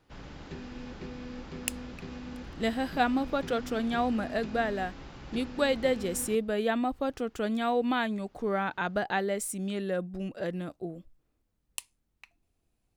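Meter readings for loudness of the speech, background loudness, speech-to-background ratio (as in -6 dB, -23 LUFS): -31.0 LUFS, -43.0 LUFS, 12.0 dB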